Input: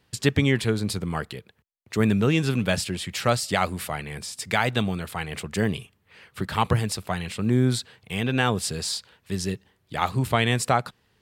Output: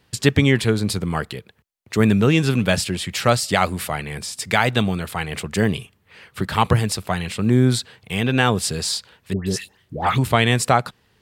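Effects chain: 9.33–10.18 dispersion highs, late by 0.136 s, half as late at 1300 Hz; gain +5 dB

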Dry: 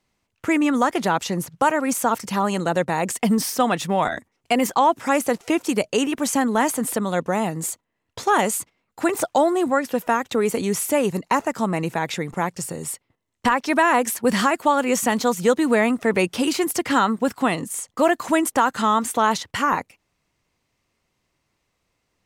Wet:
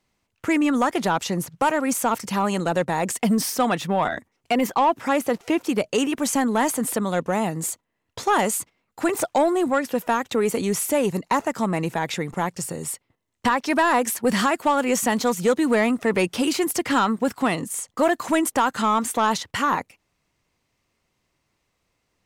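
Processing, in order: 3.76–5.86 dynamic EQ 8400 Hz, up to -7 dB, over -46 dBFS, Q 0.77; soft clip -10.5 dBFS, distortion -19 dB

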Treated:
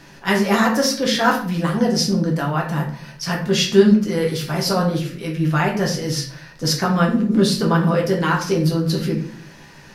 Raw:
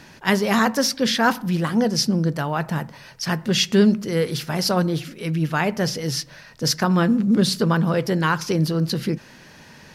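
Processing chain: shoebox room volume 51 m³, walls mixed, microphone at 0.75 m; gain -2 dB

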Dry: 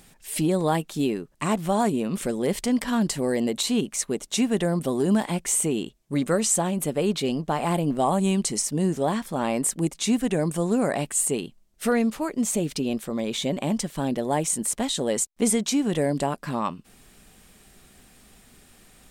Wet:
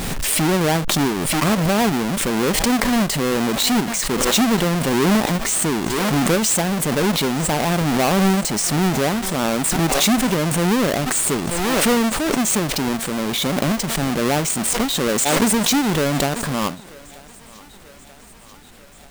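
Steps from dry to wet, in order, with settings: half-waves squared off; thinning echo 0.935 s, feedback 73%, high-pass 360 Hz, level -22 dB; backwards sustainer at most 20 dB/s

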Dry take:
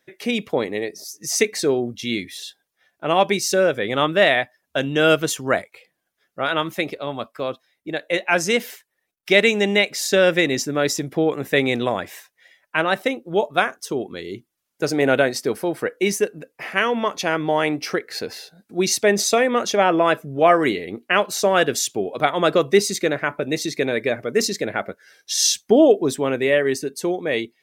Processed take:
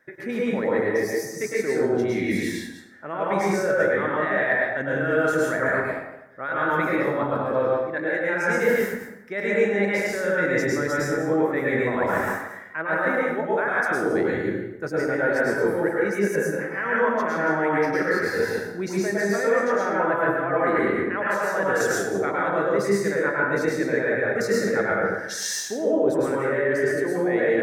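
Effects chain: reverse delay 0.116 s, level -9 dB; de-esser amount 35%; resonant high shelf 2300 Hz -9.5 dB, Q 3; notch 710 Hz, Q 14; reverse; compressor 10:1, threshold -30 dBFS, peak gain reduction 21.5 dB; reverse; plate-style reverb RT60 0.9 s, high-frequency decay 0.6×, pre-delay 95 ms, DRR -5.5 dB; gain +4 dB

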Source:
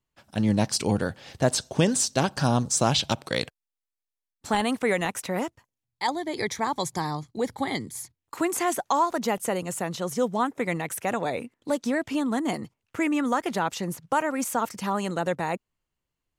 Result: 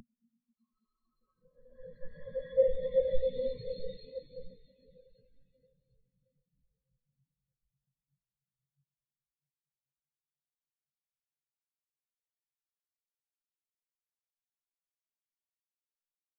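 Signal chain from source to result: half-wave gain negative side -12 dB; de-hum 45.92 Hz, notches 6; Paulstretch 20×, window 0.10 s, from 3.22; upward compressor, threshold -33 dBFS; bell 4600 Hz +4 dB 2.3 oct; diffused feedback echo 0.719 s, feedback 67%, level -5 dB; spectral expander 4:1

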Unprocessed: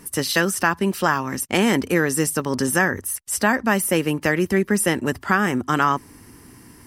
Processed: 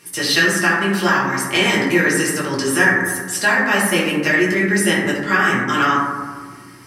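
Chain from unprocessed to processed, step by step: weighting filter D; reverb RT60 1.5 s, pre-delay 4 ms, DRR -7.5 dB; gain -7 dB

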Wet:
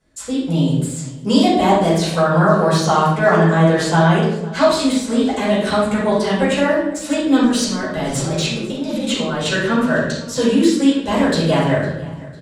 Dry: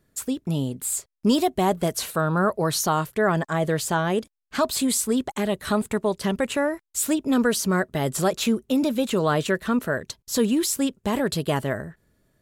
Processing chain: LPF 9700 Hz 24 dB/oct; de-esser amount 55%; HPF 48 Hz; high shelf 3800 Hz +7 dB; 7.43–9.52 negative-ratio compressor -28 dBFS, ratio -1; feedback echo 0.503 s, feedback 37%, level -20.5 dB; reverb RT60 0.80 s, pre-delay 4 ms, DRR -11 dB; gain -6.5 dB

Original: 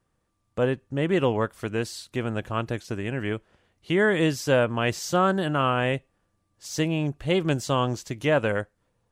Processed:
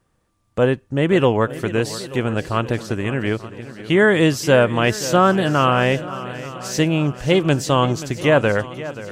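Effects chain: swung echo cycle 0.883 s, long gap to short 1.5:1, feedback 43%, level -15 dB; gain +7 dB

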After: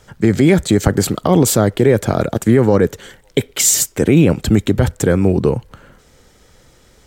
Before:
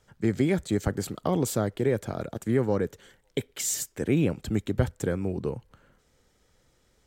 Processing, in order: 3.48–4.22 notch 1700 Hz, Q 12; maximiser +17.5 dB; gain -1 dB

